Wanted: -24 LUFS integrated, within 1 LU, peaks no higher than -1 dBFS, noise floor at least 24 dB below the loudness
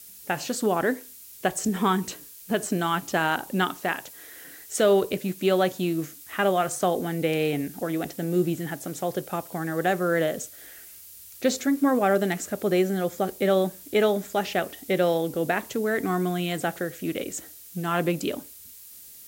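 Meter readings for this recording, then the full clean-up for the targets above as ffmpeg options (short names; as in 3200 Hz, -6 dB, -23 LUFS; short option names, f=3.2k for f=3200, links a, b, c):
noise floor -46 dBFS; noise floor target -50 dBFS; loudness -26.0 LUFS; peak -11.0 dBFS; loudness target -24.0 LUFS
-> -af "afftdn=nr=6:nf=-46"
-af "volume=2dB"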